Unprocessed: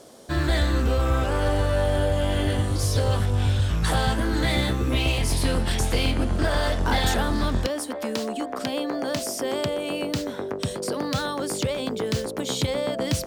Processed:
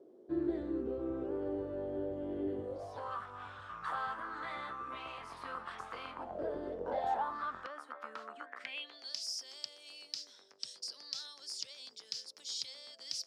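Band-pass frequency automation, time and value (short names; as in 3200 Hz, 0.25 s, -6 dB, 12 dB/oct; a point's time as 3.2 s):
band-pass, Q 6.5
2.55 s 360 Hz
3.11 s 1200 Hz
6.12 s 1200 Hz
6.61 s 330 Hz
7.42 s 1300 Hz
8.36 s 1300 Hz
9.15 s 5100 Hz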